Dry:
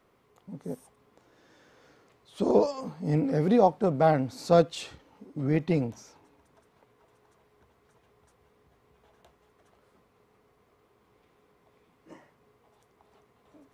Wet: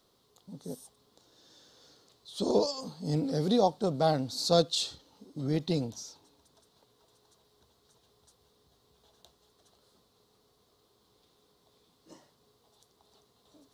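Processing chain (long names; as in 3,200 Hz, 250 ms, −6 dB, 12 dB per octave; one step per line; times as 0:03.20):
high shelf with overshoot 3,000 Hz +9.5 dB, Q 3
level −4 dB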